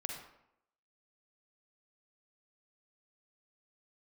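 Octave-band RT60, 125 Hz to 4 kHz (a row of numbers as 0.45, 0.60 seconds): 0.75, 0.80, 0.80, 0.75, 0.65, 0.50 seconds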